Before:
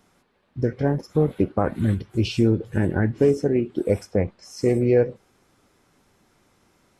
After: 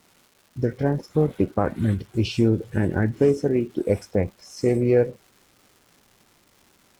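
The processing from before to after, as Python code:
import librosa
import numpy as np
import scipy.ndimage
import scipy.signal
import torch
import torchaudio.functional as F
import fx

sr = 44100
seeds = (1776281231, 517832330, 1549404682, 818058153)

y = fx.dmg_crackle(x, sr, seeds[0], per_s=500.0, level_db=-44.0)
y = fx.cheby_harmonics(y, sr, harmonics=(3,), levels_db=(-31,), full_scale_db=-7.0)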